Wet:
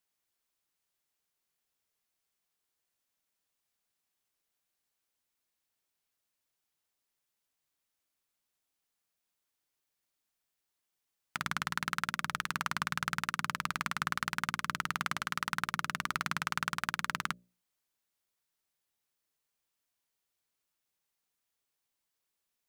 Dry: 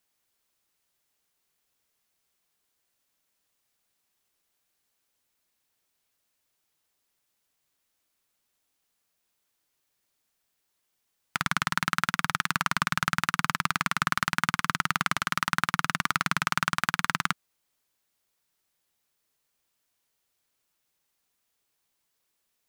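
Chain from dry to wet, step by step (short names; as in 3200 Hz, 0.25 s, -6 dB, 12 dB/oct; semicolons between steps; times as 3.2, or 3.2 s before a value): notches 60/120/180/240/300/360/420/480/540/600 Hz; gain -7.5 dB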